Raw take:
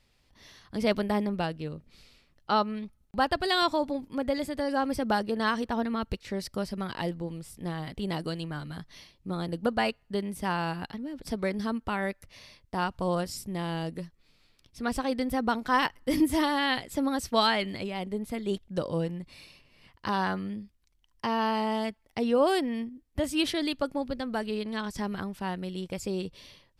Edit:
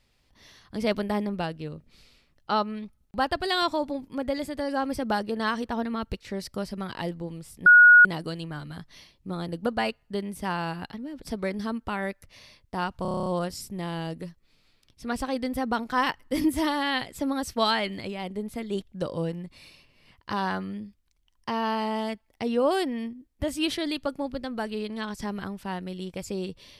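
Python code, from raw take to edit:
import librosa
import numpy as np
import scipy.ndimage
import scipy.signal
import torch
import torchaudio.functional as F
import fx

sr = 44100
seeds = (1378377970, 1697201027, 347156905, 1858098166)

y = fx.edit(x, sr, fx.bleep(start_s=7.66, length_s=0.39, hz=1450.0, db=-9.5),
    fx.stutter(start_s=13.02, slice_s=0.03, count=9), tone=tone)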